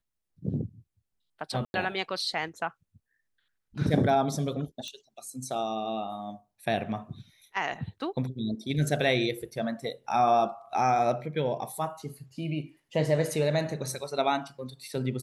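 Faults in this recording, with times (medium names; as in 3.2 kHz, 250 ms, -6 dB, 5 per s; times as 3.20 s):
1.65–1.74 s: dropout 91 ms
4.88 s: pop -27 dBFS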